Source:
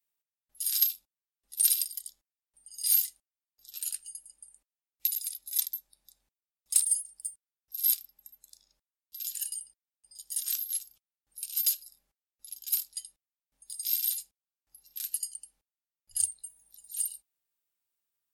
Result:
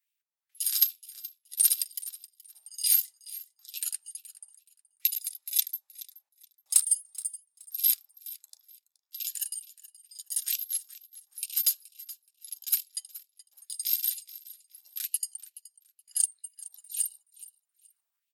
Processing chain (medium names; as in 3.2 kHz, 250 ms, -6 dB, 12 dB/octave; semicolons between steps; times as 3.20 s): transient shaper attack +3 dB, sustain -9 dB; feedback delay 424 ms, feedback 23%, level -18 dB; LFO high-pass sine 2.2 Hz 720–2700 Hz